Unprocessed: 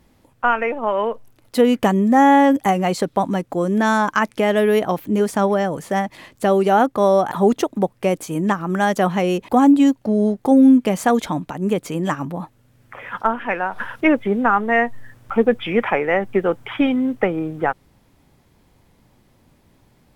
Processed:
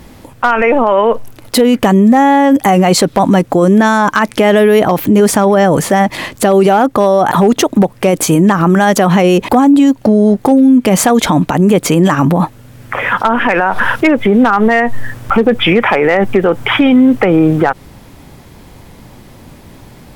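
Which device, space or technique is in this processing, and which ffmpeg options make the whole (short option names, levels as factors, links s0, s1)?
loud club master: -af "acompressor=threshold=0.126:ratio=2.5,asoftclip=type=hard:threshold=0.251,alimiter=level_in=10.6:limit=0.891:release=50:level=0:latency=1,volume=0.891"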